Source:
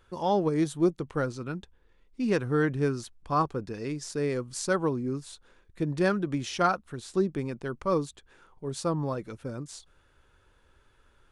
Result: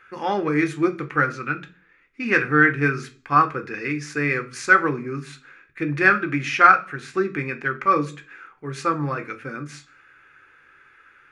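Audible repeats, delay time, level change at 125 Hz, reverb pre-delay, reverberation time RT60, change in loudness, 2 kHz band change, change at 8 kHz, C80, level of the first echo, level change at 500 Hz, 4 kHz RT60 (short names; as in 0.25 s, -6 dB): none, none, +3.0 dB, 3 ms, 0.40 s, +8.5 dB, +18.0 dB, -0.5 dB, 22.0 dB, none, +2.0 dB, 0.45 s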